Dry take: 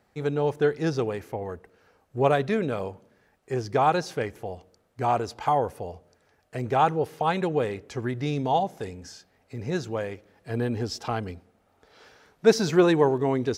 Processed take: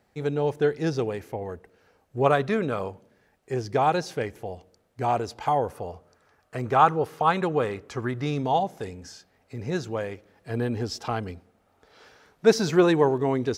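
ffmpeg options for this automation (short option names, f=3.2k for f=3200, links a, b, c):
-af "asetnsamples=n=441:p=0,asendcmd='2.26 equalizer g 6;2.9 equalizer g -2.5;5.7 equalizer g 8.5;8.44 equalizer g 1',equalizer=f=1.2k:t=o:w=0.62:g=-3"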